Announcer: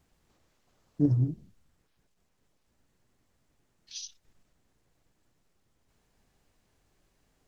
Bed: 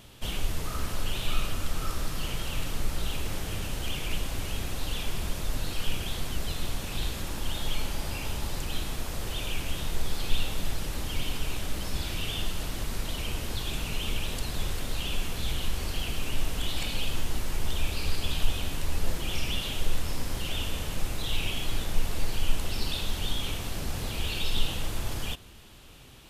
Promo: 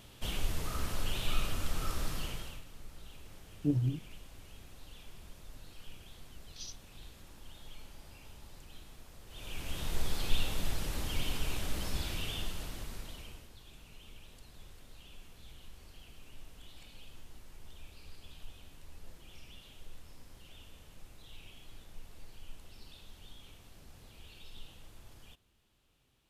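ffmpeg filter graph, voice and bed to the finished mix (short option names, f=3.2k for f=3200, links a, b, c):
-filter_complex "[0:a]adelay=2650,volume=-5.5dB[a];[1:a]volume=12.5dB,afade=t=out:st=2.11:d=0.52:silence=0.158489,afade=t=in:st=9.28:d=0.7:silence=0.149624,afade=t=out:st=11.85:d=1.65:silence=0.112202[b];[a][b]amix=inputs=2:normalize=0"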